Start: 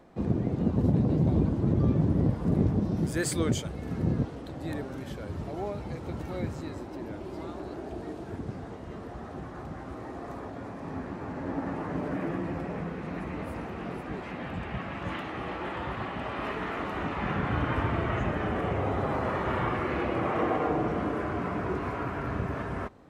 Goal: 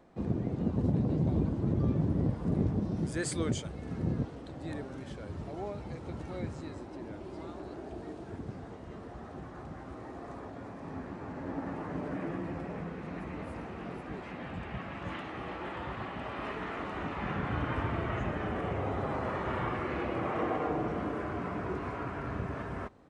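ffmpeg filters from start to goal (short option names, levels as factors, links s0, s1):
-af "aresample=22050,aresample=44100,volume=0.596"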